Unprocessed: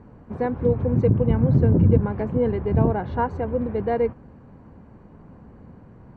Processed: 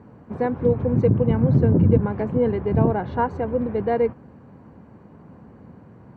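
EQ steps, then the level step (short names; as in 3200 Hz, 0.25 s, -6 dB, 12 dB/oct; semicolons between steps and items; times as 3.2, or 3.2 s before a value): HPF 94 Hz; +1.5 dB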